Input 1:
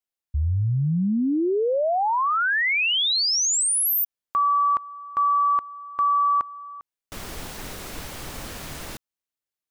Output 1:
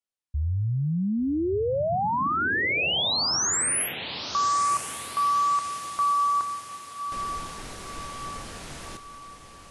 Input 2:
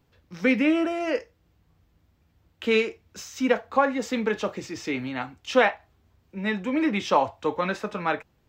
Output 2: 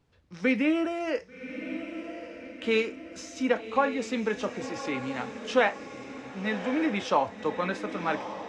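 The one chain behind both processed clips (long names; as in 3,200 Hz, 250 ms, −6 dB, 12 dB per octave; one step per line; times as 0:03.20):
feedback delay with all-pass diffusion 1,137 ms, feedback 49%, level −10 dB
level −3.5 dB
AAC 64 kbit/s 24,000 Hz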